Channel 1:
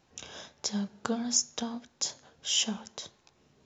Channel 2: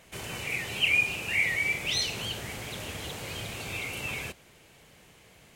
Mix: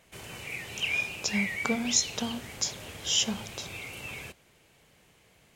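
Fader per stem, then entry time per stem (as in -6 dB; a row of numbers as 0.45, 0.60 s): +1.5, -5.5 dB; 0.60, 0.00 s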